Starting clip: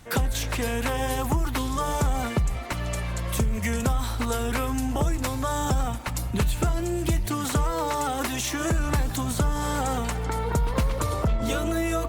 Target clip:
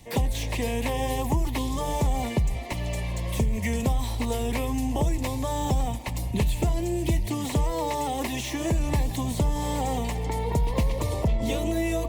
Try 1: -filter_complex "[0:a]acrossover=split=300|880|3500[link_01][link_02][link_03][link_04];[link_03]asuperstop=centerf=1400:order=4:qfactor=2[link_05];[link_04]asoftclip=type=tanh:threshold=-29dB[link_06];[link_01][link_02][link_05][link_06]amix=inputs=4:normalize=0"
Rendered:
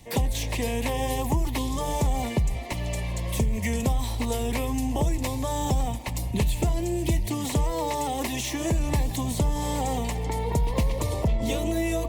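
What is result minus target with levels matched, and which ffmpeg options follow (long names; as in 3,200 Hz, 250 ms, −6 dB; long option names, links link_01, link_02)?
soft clipping: distortion −7 dB
-filter_complex "[0:a]acrossover=split=300|880|3500[link_01][link_02][link_03][link_04];[link_03]asuperstop=centerf=1400:order=4:qfactor=2[link_05];[link_04]asoftclip=type=tanh:threshold=-36.5dB[link_06];[link_01][link_02][link_05][link_06]amix=inputs=4:normalize=0"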